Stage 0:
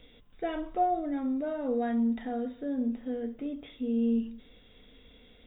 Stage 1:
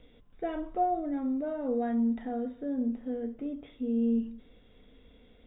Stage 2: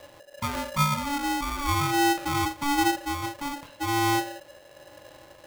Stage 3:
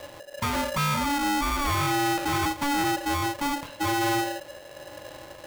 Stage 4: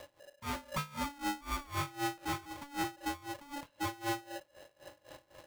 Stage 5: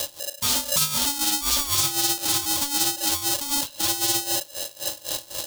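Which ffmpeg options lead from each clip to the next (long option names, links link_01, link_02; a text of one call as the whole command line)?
ffmpeg -i in.wav -af "highshelf=frequency=2300:gain=-11.5" out.wav
ffmpeg -i in.wav -af "aphaser=in_gain=1:out_gain=1:delay=2.4:decay=0.29:speed=0.39:type=sinusoidal,aeval=exprs='val(0)*sgn(sin(2*PI*570*n/s))':channel_layout=same,volume=4.5dB" out.wav
ffmpeg -i in.wav -af "asoftclip=type=hard:threshold=-30dB,volume=6.5dB" out.wav
ffmpeg -i in.wav -af "aeval=exprs='val(0)*pow(10,-23*(0.5-0.5*cos(2*PI*3.9*n/s))/20)':channel_layout=same,volume=-7dB" out.wav
ffmpeg -i in.wav -filter_complex "[0:a]asplit=2[link_01][link_02];[link_02]aeval=exprs='0.0316*sin(PI/2*3.98*val(0)/0.0316)':channel_layout=same,volume=-7dB[link_03];[link_01][link_03]amix=inputs=2:normalize=0,aexciter=amount=6.8:drive=5.4:freq=3100,volume=4.5dB" out.wav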